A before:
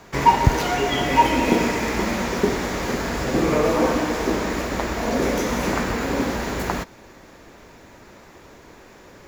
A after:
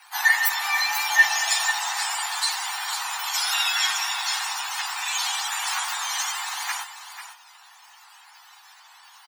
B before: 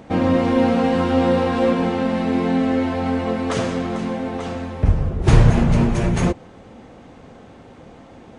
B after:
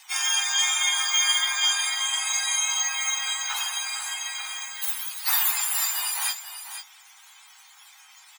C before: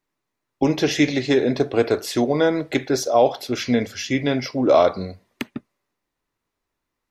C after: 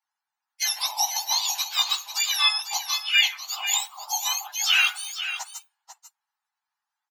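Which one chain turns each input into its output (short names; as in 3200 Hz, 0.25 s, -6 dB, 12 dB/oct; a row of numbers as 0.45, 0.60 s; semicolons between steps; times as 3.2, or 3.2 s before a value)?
spectrum mirrored in octaves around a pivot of 1300 Hz; steep high-pass 780 Hz 72 dB/oct; on a send: echo 0.494 s -10.5 dB; on the sum: match loudness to -23 LUFS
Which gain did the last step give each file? +1.5, -1.5, +0.5 dB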